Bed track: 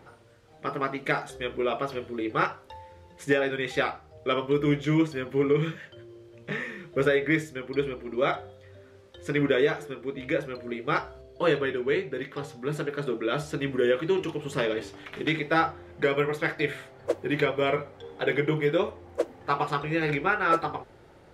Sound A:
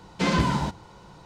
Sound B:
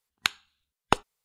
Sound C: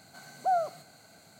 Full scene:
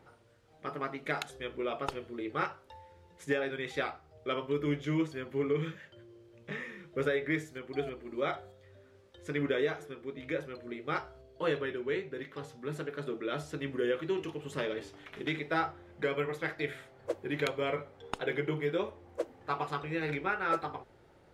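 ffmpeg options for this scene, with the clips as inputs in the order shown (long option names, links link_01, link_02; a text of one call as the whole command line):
ffmpeg -i bed.wav -i cue0.wav -i cue1.wav -i cue2.wav -filter_complex "[2:a]asplit=2[link_01][link_02];[0:a]volume=-7.5dB[link_03];[link_01]aecho=1:1:2.3:0.65[link_04];[3:a]aeval=exprs='val(0)*pow(10,-28*if(lt(mod(-3.2*n/s,1),2*abs(-3.2)/1000),1-mod(-3.2*n/s,1)/(2*abs(-3.2)/1000),(mod(-3.2*n/s,1)-2*abs(-3.2)/1000)/(1-2*abs(-3.2)/1000))/20)':channel_layout=same[link_05];[link_04]atrim=end=1.24,asetpts=PTS-STARTPTS,volume=-16.5dB,afade=type=in:duration=0.004:curve=hsin,afade=type=out:start_time=1.236:duration=0.004:curve=hsin,adelay=960[link_06];[link_05]atrim=end=1.39,asetpts=PTS-STARTPTS,volume=-13.5dB,afade=type=in:duration=0.004:curve=hsin,afade=type=out:start_time=1.386:duration=0.004:curve=hsin,adelay=7270[link_07];[link_02]atrim=end=1.24,asetpts=PTS-STARTPTS,volume=-15dB,afade=type=in:duration=0.004:curve=hsin,afade=type=out:start_time=1.236:duration=0.004:curve=hsin,adelay=17210[link_08];[link_03][link_06][link_07][link_08]amix=inputs=4:normalize=0" out.wav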